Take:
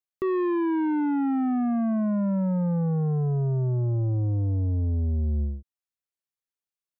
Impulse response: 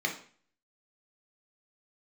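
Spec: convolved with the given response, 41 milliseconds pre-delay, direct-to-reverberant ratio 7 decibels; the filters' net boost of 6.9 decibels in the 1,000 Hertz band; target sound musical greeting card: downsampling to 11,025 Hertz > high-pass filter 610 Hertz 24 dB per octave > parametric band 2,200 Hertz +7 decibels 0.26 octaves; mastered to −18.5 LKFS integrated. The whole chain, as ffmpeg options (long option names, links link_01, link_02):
-filter_complex "[0:a]equalizer=frequency=1000:width_type=o:gain=8.5,asplit=2[link_01][link_02];[1:a]atrim=start_sample=2205,adelay=41[link_03];[link_02][link_03]afir=irnorm=-1:irlink=0,volume=-14.5dB[link_04];[link_01][link_04]amix=inputs=2:normalize=0,aresample=11025,aresample=44100,highpass=frequency=610:width=0.5412,highpass=frequency=610:width=1.3066,equalizer=frequency=2200:width_type=o:width=0.26:gain=7,volume=13.5dB"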